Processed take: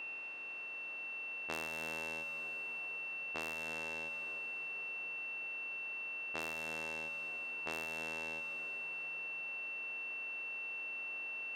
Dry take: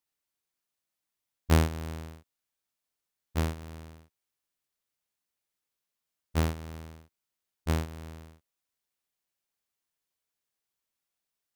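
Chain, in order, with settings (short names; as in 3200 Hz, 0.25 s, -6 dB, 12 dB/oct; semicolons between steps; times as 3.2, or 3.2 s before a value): per-bin compression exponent 0.4; HPF 470 Hz 12 dB/oct; low-pass opened by the level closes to 2100 Hz, open at -30 dBFS; compressor 2.5:1, threshold -43 dBFS, peak gain reduction 14 dB; whine 2700 Hz -40 dBFS; reverb RT60 5.3 s, pre-delay 0.111 s, DRR 8 dB; gain -1.5 dB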